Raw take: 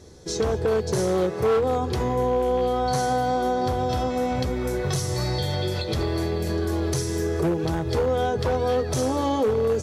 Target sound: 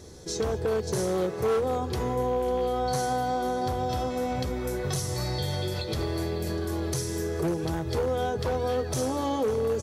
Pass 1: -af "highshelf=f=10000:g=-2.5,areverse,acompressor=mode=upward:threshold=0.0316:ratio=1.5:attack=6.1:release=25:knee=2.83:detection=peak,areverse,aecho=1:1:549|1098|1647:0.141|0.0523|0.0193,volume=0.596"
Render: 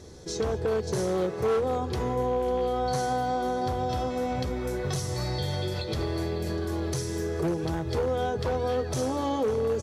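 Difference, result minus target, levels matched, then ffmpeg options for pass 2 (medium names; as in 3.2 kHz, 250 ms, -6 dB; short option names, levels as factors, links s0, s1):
8 kHz band -3.0 dB
-af "highshelf=f=10000:g=8,areverse,acompressor=mode=upward:threshold=0.0316:ratio=1.5:attack=6.1:release=25:knee=2.83:detection=peak,areverse,aecho=1:1:549|1098|1647:0.141|0.0523|0.0193,volume=0.596"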